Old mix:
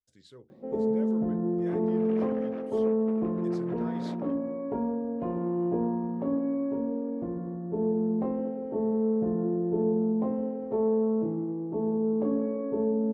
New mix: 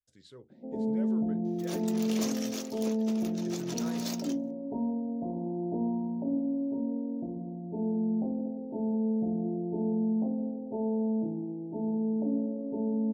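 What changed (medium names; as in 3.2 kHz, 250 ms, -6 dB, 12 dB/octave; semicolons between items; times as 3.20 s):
first sound: add rippled Chebyshev low-pass 940 Hz, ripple 9 dB; second sound: remove low-pass 1.8 kHz 24 dB/octave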